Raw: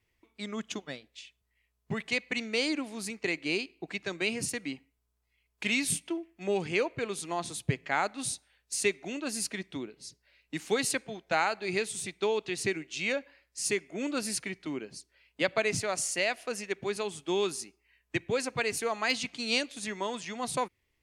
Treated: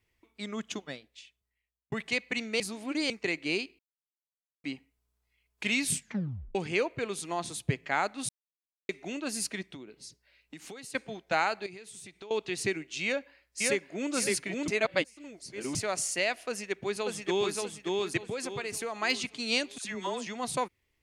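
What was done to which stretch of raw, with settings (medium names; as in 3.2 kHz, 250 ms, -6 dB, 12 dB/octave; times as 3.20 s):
0.88–1.92 s: fade out
2.60–3.10 s: reverse
3.79–4.64 s: mute
5.92 s: tape stop 0.63 s
8.29–8.89 s: mute
9.74–10.95 s: compression 12:1, threshold -41 dBFS
11.66–12.31 s: compression, threshold -44 dBFS
13.04–14.13 s: echo throw 560 ms, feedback 25%, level -1 dB
14.68–15.75 s: reverse
16.48–17.55 s: echo throw 580 ms, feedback 35%, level -2 dB
18.17–19.00 s: compression 5:1, threshold -31 dBFS
19.78–20.27 s: phase dispersion lows, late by 71 ms, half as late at 930 Hz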